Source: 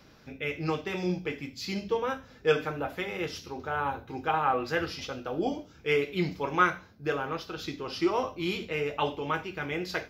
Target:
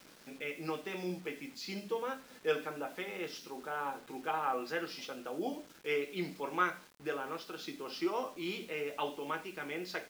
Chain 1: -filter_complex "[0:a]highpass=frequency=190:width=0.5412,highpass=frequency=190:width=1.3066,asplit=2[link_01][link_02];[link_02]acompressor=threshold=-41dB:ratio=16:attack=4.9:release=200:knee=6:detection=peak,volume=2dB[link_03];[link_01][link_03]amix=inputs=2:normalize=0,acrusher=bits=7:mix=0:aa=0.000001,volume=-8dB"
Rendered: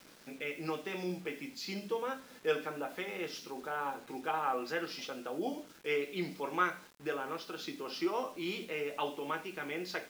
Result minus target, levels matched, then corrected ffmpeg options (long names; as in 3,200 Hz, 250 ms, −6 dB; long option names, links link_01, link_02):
downward compressor: peak gain reduction −6.5 dB
-filter_complex "[0:a]highpass=frequency=190:width=0.5412,highpass=frequency=190:width=1.3066,asplit=2[link_01][link_02];[link_02]acompressor=threshold=-48dB:ratio=16:attack=4.9:release=200:knee=6:detection=peak,volume=2dB[link_03];[link_01][link_03]amix=inputs=2:normalize=0,acrusher=bits=7:mix=0:aa=0.000001,volume=-8dB"